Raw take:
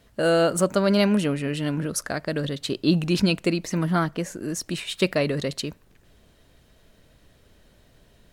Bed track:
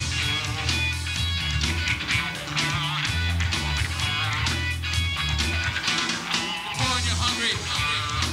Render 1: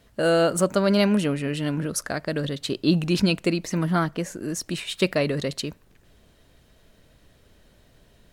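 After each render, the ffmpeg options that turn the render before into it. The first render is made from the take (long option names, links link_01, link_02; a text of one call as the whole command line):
ffmpeg -i in.wav -af anull out.wav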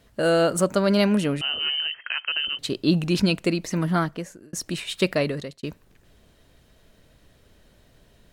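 ffmpeg -i in.wav -filter_complex "[0:a]asettb=1/sr,asplit=3[link_01][link_02][link_03];[link_01]atrim=end=1.414[link_04];[link_02]atrim=start=1.41:end=2.59,asetpts=PTS-STARTPTS,afade=type=in:duration=0.004:curve=qsin,afade=type=out:start_time=1.176:duration=0.004:curve=qsin,lowpass=frequency=2700:width_type=q:width=0.5098,lowpass=frequency=2700:width_type=q:width=0.6013,lowpass=frequency=2700:width_type=q:width=0.9,lowpass=frequency=2700:width_type=q:width=2.563,afreqshift=-3200[link_05];[link_03]atrim=start=2.586[link_06];[link_04][link_05]acrossfade=duration=0.004:curve1=hsin:curve2=qsin[link_07];[link_07][link_06]acrossfade=duration=0.004:curve1=qsin:curve2=hsin,asplit=3[link_08][link_09][link_10];[link_08]atrim=end=4.53,asetpts=PTS-STARTPTS,afade=type=out:start_time=4:duration=0.53[link_11];[link_09]atrim=start=4.53:end=5.63,asetpts=PTS-STARTPTS,afade=type=in:duration=0.004:curve=hsin,afade=type=out:start_time=0.69:duration=0.41[link_12];[link_10]atrim=start=5.63,asetpts=PTS-STARTPTS,afade=type=in:duration=0.004:curve=hsin[link_13];[link_11][link_12][link_13]concat=n=3:v=0:a=1" out.wav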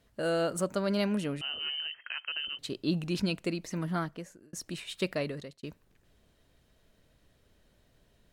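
ffmpeg -i in.wav -af "volume=-9.5dB" out.wav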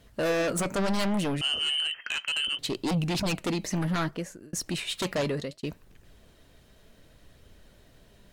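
ffmpeg -i in.wav -filter_complex "[0:a]asplit=2[link_01][link_02];[link_02]aeval=exprs='0.126*sin(PI/2*3.98*val(0)/0.126)':channel_layout=same,volume=-4dB[link_03];[link_01][link_03]amix=inputs=2:normalize=0,flanger=delay=0.3:depth=4.8:regen=83:speed=0.67:shape=sinusoidal" out.wav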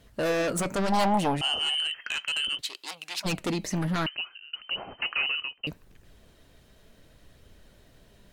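ffmpeg -i in.wav -filter_complex "[0:a]asettb=1/sr,asplit=3[link_01][link_02][link_03];[link_01]atrim=end=0.924[link_04];[link_02]atrim=start=0.92:end=1.75,asetpts=PTS-STARTPTS,afade=type=in:duration=0.004:curve=qsin,afade=type=out:start_time=0.826:duration=0.004:curve=qsin,equalizer=frequency=820:width=2.4:gain=14.5[link_05];[link_03]atrim=start=1.746[link_06];[link_04][link_05]acrossfade=duration=0.004:curve1=hsin:curve2=qsin[link_07];[link_07][link_06]acrossfade=duration=0.004:curve1=qsin:curve2=hsin,asplit=3[link_08][link_09][link_10];[link_08]afade=type=out:start_time=2.6:duration=0.02[link_11];[link_09]highpass=1300,afade=type=in:start_time=2.6:duration=0.02,afade=type=out:start_time=3.24:duration=0.02[link_12];[link_10]afade=type=in:start_time=3.24:duration=0.02[link_13];[link_11][link_12][link_13]amix=inputs=3:normalize=0,asettb=1/sr,asplit=3[link_14][link_15][link_16];[link_14]atrim=end=4.064[link_17];[link_15]atrim=start=4.06:end=5.67,asetpts=PTS-STARTPTS,afade=type=in:duration=0.004:curve=qsin,afade=type=out:start_time=1.606:duration=0.004:curve=qsin,lowpass=frequency=2600:width_type=q:width=0.5098,lowpass=frequency=2600:width_type=q:width=0.6013,lowpass=frequency=2600:width_type=q:width=0.9,lowpass=frequency=2600:width_type=q:width=2.563,afreqshift=-3100[link_18];[link_16]atrim=start=5.666[link_19];[link_17][link_18]acrossfade=duration=0.004:curve1=hsin:curve2=qsin[link_20];[link_20][link_19]acrossfade=duration=0.004:curve1=qsin:curve2=hsin" out.wav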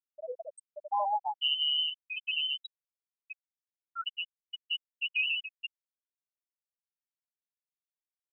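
ffmpeg -i in.wav -af "highpass=770,afftfilt=real='re*gte(hypot(re,im),0.178)':imag='im*gte(hypot(re,im),0.178)':win_size=1024:overlap=0.75" out.wav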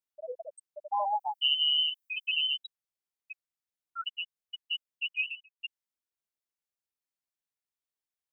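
ffmpeg -i in.wav -filter_complex "[0:a]asettb=1/sr,asplit=3[link_01][link_02][link_03];[link_01]atrim=end=1.064[link_04];[link_02]atrim=start=1.06:end=2.57,asetpts=PTS-STARTPTS,afade=type=in:duration=0.004:curve=qsin,afade=type=out:start_time=1.506:duration=0.004:curve=qsin,aemphasis=mode=production:type=50kf[link_05];[link_03]atrim=start=2.566[link_06];[link_04][link_05]acrossfade=duration=0.004:curve1=hsin:curve2=qsin[link_07];[link_07][link_06]acrossfade=duration=0.004:curve1=qsin:curve2=hsin,asettb=1/sr,asplit=3[link_08][link_09][link_10];[link_08]atrim=end=5.154[link_11];[link_09]atrim=start=5.15:end=5.6,asetpts=PTS-STARTPTS,afade=type=in:duration=0.004:curve=qsin,afade=type=out:start_time=0.446:duration=0.004:curve=qsin,agate=range=-18dB:threshold=-30dB:ratio=16:release=100:detection=peak[link_12];[link_10]atrim=start=5.596[link_13];[link_11][link_12]acrossfade=duration=0.004:curve1=hsin:curve2=qsin[link_14];[link_14][link_13]acrossfade=duration=0.004:curve1=qsin:curve2=hsin" out.wav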